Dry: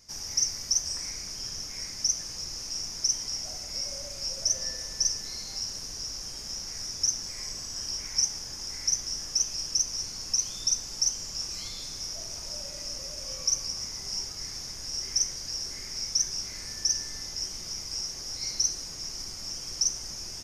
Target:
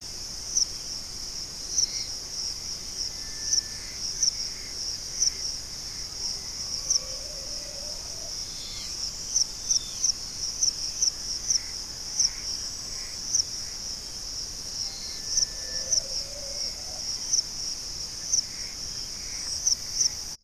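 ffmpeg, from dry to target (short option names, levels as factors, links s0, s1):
-af "areverse,anlmdn=0.001,volume=1.26"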